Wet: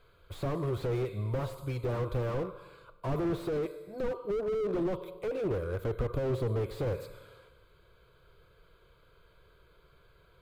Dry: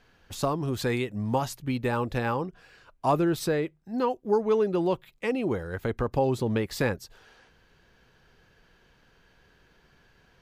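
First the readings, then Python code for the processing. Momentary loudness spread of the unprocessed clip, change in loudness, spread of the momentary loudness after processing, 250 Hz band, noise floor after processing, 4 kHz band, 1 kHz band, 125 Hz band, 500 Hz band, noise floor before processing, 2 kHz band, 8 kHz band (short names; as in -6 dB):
7 LU, -5.5 dB, 7 LU, -7.5 dB, -63 dBFS, -10.5 dB, -12.0 dB, -1.5 dB, -5.0 dB, -63 dBFS, -11.5 dB, under -15 dB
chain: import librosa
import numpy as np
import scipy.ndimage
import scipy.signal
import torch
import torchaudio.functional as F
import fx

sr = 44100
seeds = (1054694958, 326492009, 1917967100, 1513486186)

y = fx.peak_eq(x, sr, hz=2800.0, db=-15.0, octaves=0.24)
y = fx.fixed_phaser(y, sr, hz=1200.0, stages=8)
y = fx.rev_schroeder(y, sr, rt60_s=1.3, comb_ms=32, drr_db=15.0)
y = fx.slew_limit(y, sr, full_power_hz=11.0)
y = F.gain(torch.from_numpy(y), 2.5).numpy()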